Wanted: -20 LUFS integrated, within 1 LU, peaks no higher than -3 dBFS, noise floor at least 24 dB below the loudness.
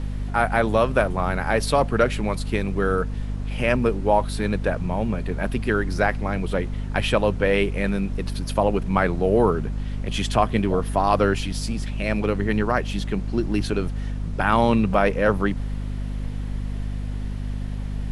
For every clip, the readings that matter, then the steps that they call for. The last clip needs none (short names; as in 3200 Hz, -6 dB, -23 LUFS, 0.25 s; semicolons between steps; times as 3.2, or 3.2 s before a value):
hum 50 Hz; harmonics up to 250 Hz; hum level -25 dBFS; noise floor -29 dBFS; noise floor target -48 dBFS; loudness -23.5 LUFS; peak -4.5 dBFS; loudness target -20.0 LUFS
-> notches 50/100/150/200/250 Hz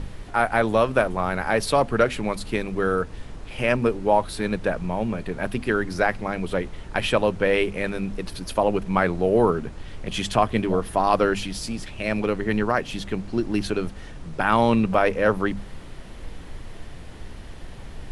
hum none; noise floor -39 dBFS; noise floor target -48 dBFS
-> noise print and reduce 9 dB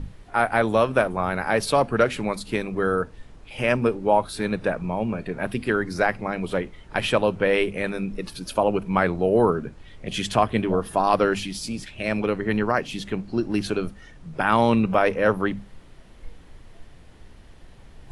noise floor -47 dBFS; noise floor target -48 dBFS
-> noise print and reduce 6 dB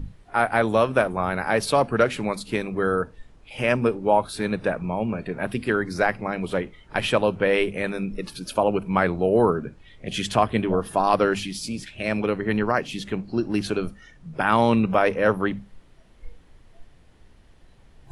noise floor -53 dBFS; loudness -23.5 LUFS; peak -4.5 dBFS; loudness target -20.0 LUFS
-> gain +3.5 dB; limiter -3 dBFS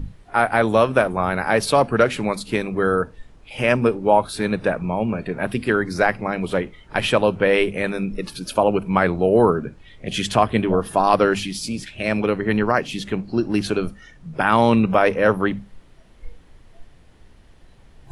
loudness -20.5 LUFS; peak -3.0 dBFS; noise floor -49 dBFS